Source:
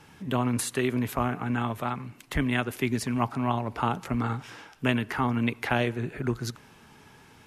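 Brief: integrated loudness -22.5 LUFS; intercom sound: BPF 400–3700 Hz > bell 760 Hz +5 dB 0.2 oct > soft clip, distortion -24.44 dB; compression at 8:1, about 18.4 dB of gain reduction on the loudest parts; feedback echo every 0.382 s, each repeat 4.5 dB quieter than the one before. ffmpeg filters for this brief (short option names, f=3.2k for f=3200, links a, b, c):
-af "acompressor=threshold=-41dB:ratio=8,highpass=400,lowpass=3.7k,equalizer=f=760:t=o:w=0.2:g=5,aecho=1:1:382|764|1146|1528|1910|2292|2674|3056|3438:0.596|0.357|0.214|0.129|0.0772|0.0463|0.0278|0.0167|0.01,asoftclip=threshold=-31dB,volume=25dB"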